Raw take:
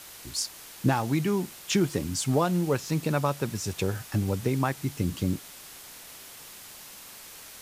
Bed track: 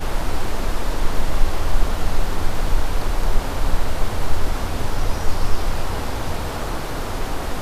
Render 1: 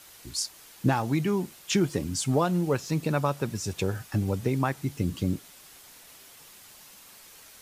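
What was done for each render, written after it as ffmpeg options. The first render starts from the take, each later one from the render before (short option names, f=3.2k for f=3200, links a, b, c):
-af "afftdn=nr=6:nf=-46"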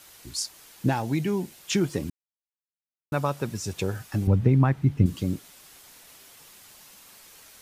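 -filter_complex "[0:a]asettb=1/sr,asplit=3[a][b][c];[a]atrim=end=0.864[d];[b]atrim=start=0.86:end=1.59,asetpts=PTS-STARTPTS,afade=t=in:d=0.004:c=qsin,afade=t=out:st=0.726:d=0.004:c=qsin,equalizer=f=1.2k:t=o:w=0.34:g=-8[e];[c]atrim=start=1.586[f];[d][e]acrossfade=d=0.004:c1=hsin:c2=qsin[g];[g][f]acrossfade=d=0.004:c1=qsin:c2=hsin,asettb=1/sr,asplit=3[h][i][j];[h]atrim=end=4.274[k];[i]atrim=start=4.27:end=5.06,asetpts=PTS-STARTPTS,afade=t=in:d=0.004:c=qsin,afade=t=out:st=0.786:d=0.004:c=qsin,bass=f=250:g=11,treble=f=4k:g=-15[l];[j]atrim=start=5.056[m];[k][l]acrossfade=d=0.004:c1=hsin:c2=qsin[n];[n][m]acrossfade=d=0.004:c1=qsin:c2=hsin,asplit=3[o][p][q];[o]atrim=end=2.1,asetpts=PTS-STARTPTS,afade=t=out:st=2.096:d=0.004:c=hsin[r];[p]atrim=start=2.1:end=3.12,asetpts=PTS-STARTPTS,volume=0[s];[q]atrim=start=3.12,asetpts=PTS-STARTPTS,afade=t=in:d=0.004:c=hsin[t];[r][s][t]concat=n=3:v=0:a=1"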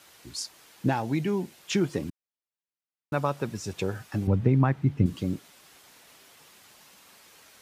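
-af "highpass=f=120:p=1,highshelf=f=5.8k:g=-8.5"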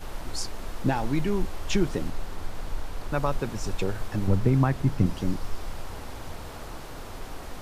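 -filter_complex "[1:a]volume=-13.5dB[a];[0:a][a]amix=inputs=2:normalize=0"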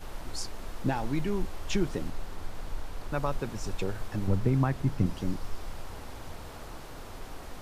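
-af "volume=-4dB"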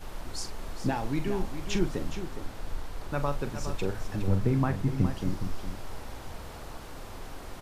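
-filter_complex "[0:a]asplit=2[a][b];[b]adelay=42,volume=-10.5dB[c];[a][c]amix=inputs=2:normalize=0,asplit=2[d][e];[e]aecho=0:1:414:0.316[f];[d][f]amix=inputs=2:normalize=0"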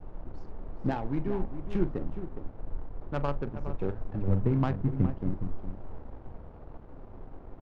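-af "aresample=16000,aeval=exprs='sgn(val(0))*max(abs(val(0))-0.00316,0)':c=same,aresample=44100,adynamicsmooth=sensitivity=1.5:basefreq=640"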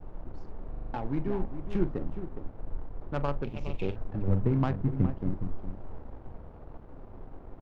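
-filter_complex "[0:a]asettb=1/sr,asplit=3[a][b][c];[a]atrim=end=3.444[d];[b]atrim=start=3.44:end=3.96,asetpts=PTS-STARTPTS,afade=t=in:d=0.004:c=qsin,afade=t=out:st=0.516:d=0.004:c=qsin,highshelf=f=2k:t=q:w=3:g=9.5[e];[c]atrim=start=3.956[f];[d][e]acrossfade=d=0.004:c1=hsin:c2=qsin[g];[g][f]acrossfade=d=0.004:c1=qsin:c2=hsin,asplit=7[h][i][j][k][l][m][n];[h]atrim=end=0.742[o];[i]atrim=start=0.698:end=0.742[p];[j]atrim=start=0.698:end=0.742[q];[k]atrim=start=0.698:end=0.742[r];[l]atrim=start=0.698:end=0.742[s];[m]atrim=start=0.698:end=0.742[t];[n]atrim=start=0.938[u];[o][p]acrossfade=d=0.004:c1=hsin:c2=hsin[v];[v][q]acrossfade=d=0.004:c1=hsin:c2=hsin[w];[w][r]acrossfade=d=0.004:c1=hsin:c2=hsin[x];[x][s]acrossfade=d=0.004:c1=hsin:c2=hsin[y];[y][t]acrossfade=d=0.004:c1=hsin:c2=hsin[z];[z][u]acrossfade=d=0.004:c1=hsin:c2=hsin"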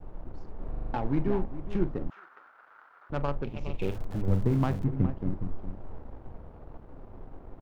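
-filter_complex "[0:a]asettb=1/sr,asplit=3[a][b][c];[a]atrim=end=2.104[d];[b]atrim=start=2.1:end=3.1,asetpts=PTS-STARTPTS,afade=t=in:d=0.004:c=qsin,afade=t=out:st=0.996:d=0.004:c=qsin,highpass=f=1.4k:t=q:w=4.9[e];[c]atrim=start=3.096[f];[d][e]acrossfade=d=0.004:c1=hsin:c2=qsin[g];[g][f]acrossfade=d=0.004:c1=qsin:c2=hsin,asettb=1/sr,asplit=3[h][i][j];[h]atrim=end=3.794[k];[i]atrim=start=3.79:end=4.84,asetpts=PTS-STARTPTS,afade=t=in:d=0.004:c=qsin,afade=t=out:st=1.046:d=0.004:c=qsin,aeval=exprs='val(0)+0.5*0.0112*sgn(val(0))':c=same[l];[j]atrim=start=4.836[m];[k][l]acrossfade=d=0.004:c1=hsin:c2=qsin[n];[n][m]acrossfade=d=0.004:c1=qsin:c2=hsin,asplit=3[o][p][q];[o]atrim=end=0.602[r];[p]atrim=start=0.598:end=1.402,asetpts=PTS-STARTPTS,volume=3.5dB[s];[q]atrim=start=1.398[t];[r][s]acrossfade=d=0.004:c1=hsin:c2=hsin[u];[u][t]acrossfade=d=0.004:c1=hsin:c2=hsin"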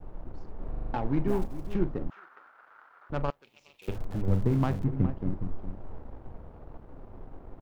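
-filter_complex "[0:a]asplit=3[a][b][c];[a]afade=t=out:st=1.27:d=0.02[d];[b]acrusher=bits=8:mode=log:mix=0:aa=0.000001,afade=t=in:st=1.27:d=0.02,afade=t=out:st=1.73:d=0.02[e];[c]afade=t=in:st=1.73:d=0.02[f];[d][e][f]amix=inputs=3:normalize=0,asettb=1/sr,asplit=3[g][h][i];[g]atrim=end=3.304[j];[h]atrim=start=3.3:end=3.88,asetpts=PTS-STARTPTS,afade=t=in:d=0.004:c=qsin,afade=t=out:st=0.576:d=0.004:c=qsin,aderivative[k];[i]atrim=start=3.876[l];[j][k]acrossfade=d=0.004:c1=hsin:c2=qsin[m];[m][l]acrossfade=d=0.004:c1=qsin:c2=hsin"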